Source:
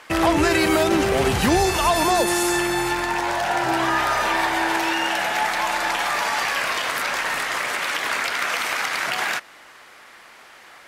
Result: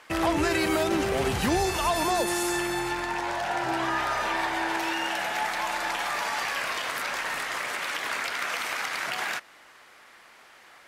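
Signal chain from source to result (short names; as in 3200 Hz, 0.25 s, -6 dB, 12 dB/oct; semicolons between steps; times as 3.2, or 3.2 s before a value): 2.79–4.79 high shelf 9900 Hz -6.5 dB; gain -6.5 dB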